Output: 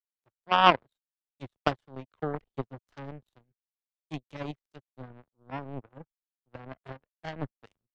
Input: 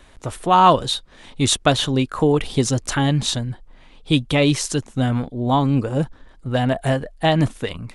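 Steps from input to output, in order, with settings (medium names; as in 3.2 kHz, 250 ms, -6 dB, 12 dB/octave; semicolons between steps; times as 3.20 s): low-pass that closes with the level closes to 1.7 kHz, closed at -15.5 dBFS; power-law waveshaper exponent 3; three bands expanded up and down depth 40%; trim -3 dB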